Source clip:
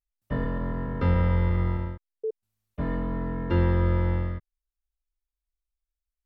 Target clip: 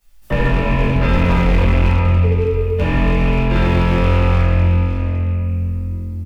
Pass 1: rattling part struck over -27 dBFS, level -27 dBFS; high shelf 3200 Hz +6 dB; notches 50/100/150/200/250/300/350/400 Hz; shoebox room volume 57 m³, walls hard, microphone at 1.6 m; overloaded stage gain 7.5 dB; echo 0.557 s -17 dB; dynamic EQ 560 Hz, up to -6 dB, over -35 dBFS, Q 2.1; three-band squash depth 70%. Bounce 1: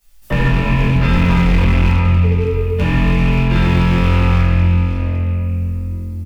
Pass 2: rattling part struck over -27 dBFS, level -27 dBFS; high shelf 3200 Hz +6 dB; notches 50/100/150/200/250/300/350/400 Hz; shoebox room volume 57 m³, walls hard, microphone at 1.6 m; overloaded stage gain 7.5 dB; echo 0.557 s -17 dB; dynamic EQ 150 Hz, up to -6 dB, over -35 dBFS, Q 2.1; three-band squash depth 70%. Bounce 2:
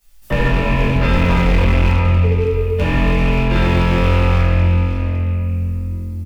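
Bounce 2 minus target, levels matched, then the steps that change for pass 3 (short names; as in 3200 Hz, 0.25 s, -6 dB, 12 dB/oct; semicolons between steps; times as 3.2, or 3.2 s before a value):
8000 Hz band +3.5 dB
remove: high shelf 3200 Hz +6 dB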